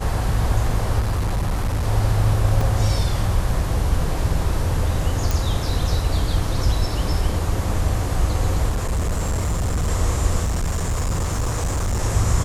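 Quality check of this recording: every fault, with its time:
0.99–1.87 s: clipped -17.5 dBFS
2.61 s: dropout 3.6 ms
5.31 s: pop
8.69–9.89 s: clipped -18 dBFS
10.44–12.03 s: clipped -18.5 dBFS

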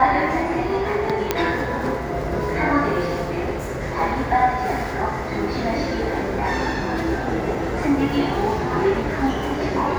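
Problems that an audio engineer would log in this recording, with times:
1.31 s: pop -3 dBFS

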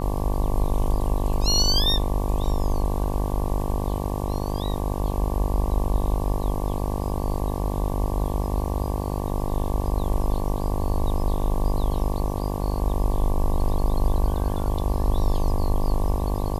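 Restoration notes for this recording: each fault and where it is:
buzz 50 Hz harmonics 23 -28 dBFS

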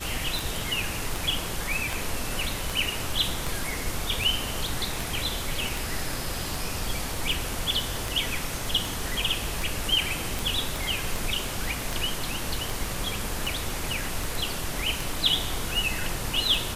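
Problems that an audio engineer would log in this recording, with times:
tick 78 rpm
10.76 s: pop

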